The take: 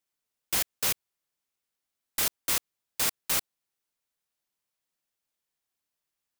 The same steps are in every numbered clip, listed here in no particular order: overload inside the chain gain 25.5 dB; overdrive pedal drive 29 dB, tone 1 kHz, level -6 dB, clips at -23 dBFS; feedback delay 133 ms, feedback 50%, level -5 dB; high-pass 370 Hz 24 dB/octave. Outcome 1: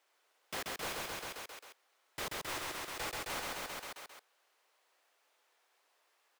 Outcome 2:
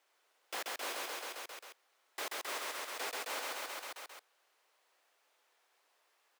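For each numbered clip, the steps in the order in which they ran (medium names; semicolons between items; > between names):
high-pass > overload inside the chain > feedback delay > overdrive pedal; feedback delay > overload inside the chain > overdrive pedal > high-pass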